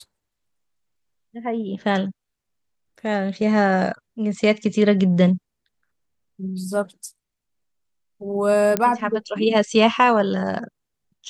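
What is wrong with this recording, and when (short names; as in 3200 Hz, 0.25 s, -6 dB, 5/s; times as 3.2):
8.77 pop -5 dBFS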